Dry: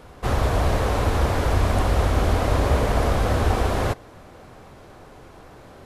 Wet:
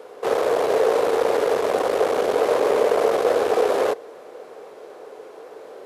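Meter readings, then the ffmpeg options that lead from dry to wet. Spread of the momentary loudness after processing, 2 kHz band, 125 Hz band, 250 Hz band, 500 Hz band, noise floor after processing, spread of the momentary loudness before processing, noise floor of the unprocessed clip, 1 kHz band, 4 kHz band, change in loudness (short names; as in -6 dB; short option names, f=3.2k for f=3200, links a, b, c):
4 LU, -0.5 dB, under -25 dB, -3.5 dB, +8.5 dB, -42 dBFS, 3 LU, -46 dBFS, +1.5 dB, -1.0 dB, +2.0 dB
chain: -af "aeval=exprs='0.447*(cos(1*acos(clip(val(0)/0.447,-1,1)))-cos(1*PI/2))+0.112*(cos(4*acos(clip(val(0)/0.447,-1,1)))-cos(4*PI/2))+0.0631*(cos(5*acos(clip(val(0)/0.447,-1,1)))-cos(5*PI/2))':c=same,highpass=f=450:t=q:w=4.9,volume=-5dB"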